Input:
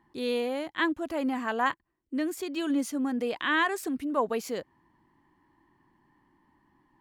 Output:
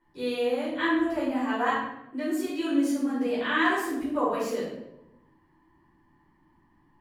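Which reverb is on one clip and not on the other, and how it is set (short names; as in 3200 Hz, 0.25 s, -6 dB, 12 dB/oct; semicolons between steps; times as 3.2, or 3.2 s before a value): shoebox room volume 270 m³, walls mixed, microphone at 4.8 m; gain -11.5 dB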